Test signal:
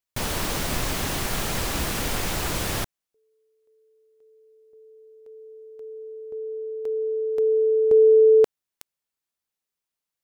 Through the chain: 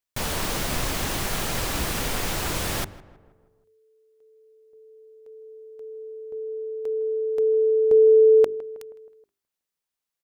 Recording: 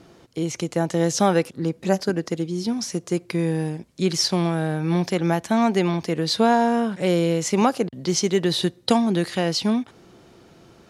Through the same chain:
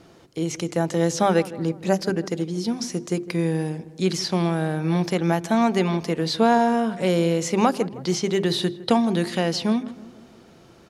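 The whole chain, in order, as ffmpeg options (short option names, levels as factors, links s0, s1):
-filter_complex "[0:a]bandreject=f=50:t=h:w=6,bandreject=f=100:t=h:w=6,bandreject=f=150:t=h:w=6,bandreject=f=200:t=h:w=6,bandreject=f=250:t=h:w=6,bandreject=f=300:t=h:w=6,bandreject=f=350:t=h:w=6,bandreject=f=400:t=h:w=6,acrossover=split=3500[s0][s1];[s1]alimiter=limit=0.0891:level=0:latency=1:release=203[s2];[s0][s2]amix=inputs=2:normalize=0,asplit=2[s3][s4];[s4]adelay=159,lowpass=f=1800:p=1,volume=0.141,asplit=2[s5][s6];[s6]adelay=159,lowpass=f=1800:p=1,volume=0.54,asplit=2[s7][s8];[s8]adelay=159,lowpass=f=1800:p=1,volume=0.54,asplit=2[s9][s10];[s10]adelay=159,lowpass=f=1800:p=1,volume=0.54,asplit=2[s11][s12];[s12]adelay=159,lowpass=f=1800:p=1,volume=0.54[s13];[s3][s5][s7][s9][s11][s13]amix=inputs=6:normalize=0"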